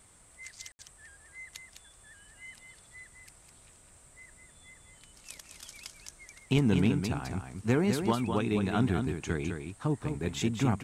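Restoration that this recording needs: clip repair -16.5 dBFS; room tone fill 0.72–0.79; inverse comb 0.206 s -6.5 dB

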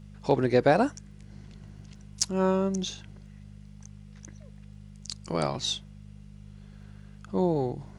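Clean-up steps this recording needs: clip repair -9.5 dBFS; de-click; de-hum 50.6 Hz, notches 4

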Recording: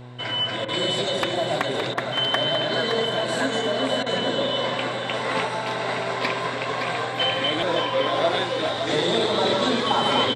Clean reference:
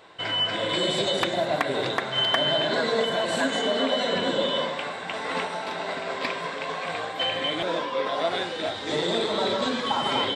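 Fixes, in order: de-hum 123.3 Hz, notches 8; interpolate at 0.65/1.94/4.03, 32 ms; inverse comb 0.566 s -7 dB; gain 0 dB, from 4.64 s -3.5 dB

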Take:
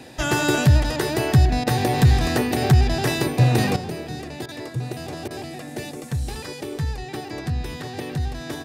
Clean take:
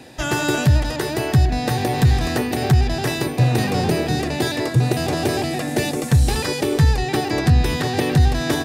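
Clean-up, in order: interpolate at 1.64/4.46/5.28, 25 ms; gain correction +11 dB, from 3.76

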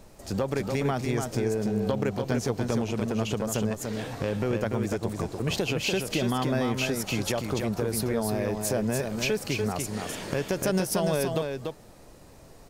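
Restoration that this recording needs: noise print and reduce 30 dB; inverse comb 0.291 s -5 dB

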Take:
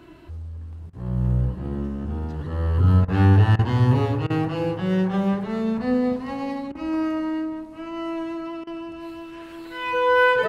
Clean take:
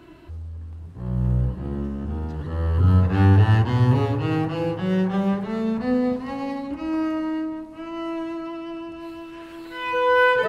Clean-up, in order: interpolate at 0.9/3.05/3.56/4.27/6.72/8.64, 29 ms

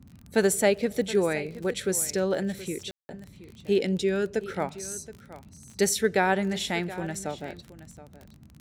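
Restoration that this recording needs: de-click; room tone fill 2.91–3.09; noise print and reduce 21 dB; inverse comb 0.723 s -16 dB

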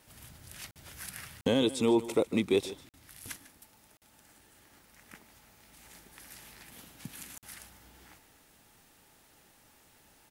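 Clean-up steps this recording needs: clip repair -16.5 dBFS; de-click; interpolate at 0.71/1.41/2.89/3.97/7.38, 48 ms; inverse comb 0.149 s -16.5 dB

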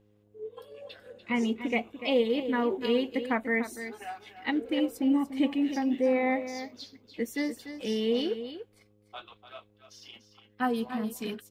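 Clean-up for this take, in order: de-hum 104.2 Hz, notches 5; inverse comb 0.293 s -11 dB

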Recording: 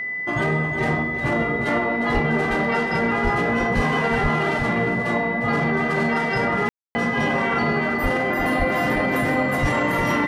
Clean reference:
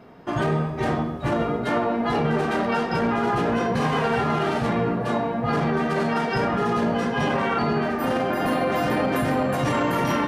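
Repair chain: notch 2000 Hz, Q 30; de-plosive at 2.13/3.23/3.75/4.22/8.02/8.58/9.61; room tone fill 6.69–6.95; inverse comb 0.356 s -9.5 dB

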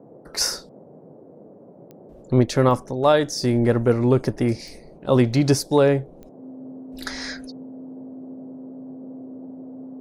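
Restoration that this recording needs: de-click; notch 260 Hz, Q 30; noise print and reduce 19 dB

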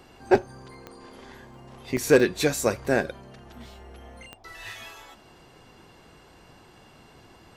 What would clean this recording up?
clip repair -8 dBFS; de-click; interpolate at 0.74/1.12/1.54/1.97/3.55, 2.1 ms

